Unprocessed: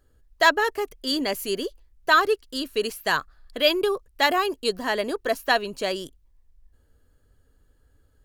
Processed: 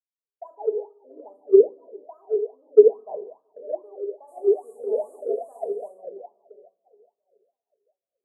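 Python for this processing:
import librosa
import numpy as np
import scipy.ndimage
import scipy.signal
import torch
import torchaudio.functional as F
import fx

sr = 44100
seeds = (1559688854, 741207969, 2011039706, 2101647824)

y = fx.echo_feedback(x, sr, ms=680, feedback_pct=40, wet_db=-16.0)
y = fx.rider(y, sr, range_db=4, speed_s=0.5)
y = fx.env_lowpass(y, sr, base_hz=1200.0, full_db=-16.5)
y = fx.spec_paint(y, sr, seeds[0], shape='noise', start_s=4.27, length_s=1.62, low_hz=1400.0, high_hz=12000.0, level_db=-24.0)
y = scipy.signal.sosfilt(scipy.signal.cheby2(4, 40, [1300.0, 5500.0], 'bandstop', fs=sr, output='sos'), y)
y = fx.low_shelf(y, sr, hz=74.0, db=-11.5)
y = fx.room_shoebox(y, sr, seeds[1], volume_m3=530.0, walls='mixed', distance_m=1.4)
y = fx.wah_lfo(y, sr, hz=2.4, low_hz=390.0, high_hz=1300.0, q=13.0)
y = fx.graphic_eq(y, sr, hz=(500, 4000, 8000), db=(12, -11, 6))
y = fx.band_widen(y, sr, depth_pct=70)
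y = y * 10.0 ** (-2.5 / 20.0)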